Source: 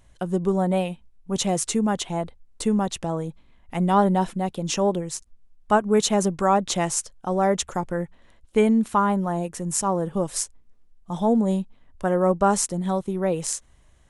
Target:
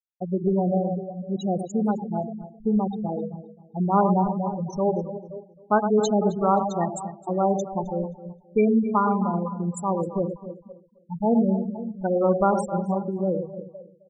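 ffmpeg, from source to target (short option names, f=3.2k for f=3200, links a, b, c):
-filter_complex "[0:a]asplit=2[a][b];[b]aecho=0:1:52|108|292|499:0.237|0.447|0.299|0.266[c];[a][c]amix=inputs=2:normalize=0,afftfilt=real='re*gte(hypot(re,im),0.2)':imag='im*gte(hypot(re,im),0.2)':win_size=1024:overlap=0.75,asplit=2[d][e];[e]adelay=263,lowpass=f=3.5k:p=1,volume=-15.5dB,asplit=2[f][g];[g]adelay=263,lowpass=f=3.5k:p=1,volume=0.27,asplit=2[h][i];[i]adelay=263,lowpass=f=3.5k:p=1,volume=0.27[j];[f][h][j]amix=inputs=3:normalize=0[k];[d][k]amix=inputs=2:normalize=0,volume=-1.5dB"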